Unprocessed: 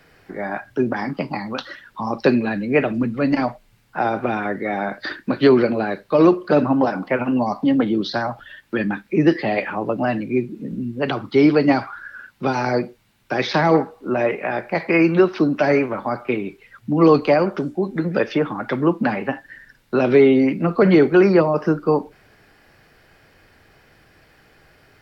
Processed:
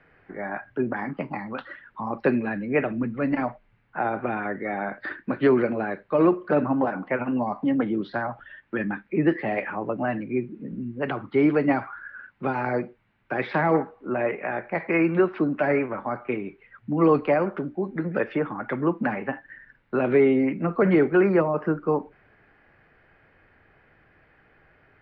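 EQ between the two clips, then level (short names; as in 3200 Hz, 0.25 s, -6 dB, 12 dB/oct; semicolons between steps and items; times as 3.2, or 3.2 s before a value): ladder low-pass 2700 Hz, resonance 25%; 0.0 dB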